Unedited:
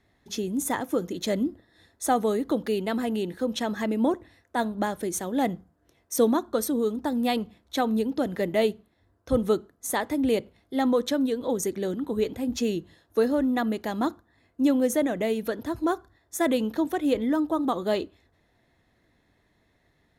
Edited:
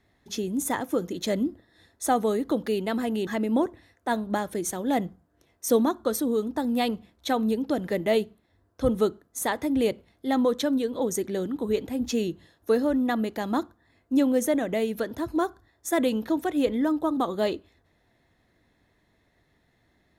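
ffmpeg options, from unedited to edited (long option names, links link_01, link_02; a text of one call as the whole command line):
ffmpeg -i in.wav -filter_complex "[0:a]asplit=2[link_01][link_02];[link_01]atrim=end=3.272[link_03];[link_02]atrim=start=3.748[link_04];[link_03][link_04]acrossfade=duration=0.004:curve1=hsin:curve2=hsin" out.wav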